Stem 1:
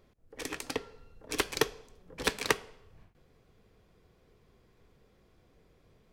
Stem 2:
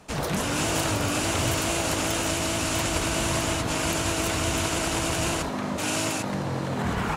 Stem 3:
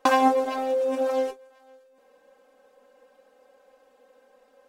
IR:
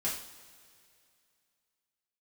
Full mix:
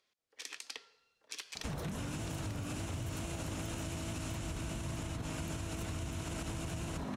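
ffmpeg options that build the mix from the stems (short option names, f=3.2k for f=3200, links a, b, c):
-filter_complex "[0:a]bandpass=f=4.7k:t=q:w=0.86:csg=0,volume=-1dB[a];[1:a]bandreject=f=4.7k:w=16,adelay=1550,volume=2dB[b];[a][b]amix=inputs=2:normalize=0,acrossover=split=240[c][d];[d]acompressor=threshold=-36dB:ratio=4[e];[c][e]amix=inputs=2:normalize=0,alimiter=level_in=1.5dB:limit=-24dB:level=0:latency=1:release=133,volume=-1.5dB,volume=0dB,acompressor=threshold=-36dB:ratio=6"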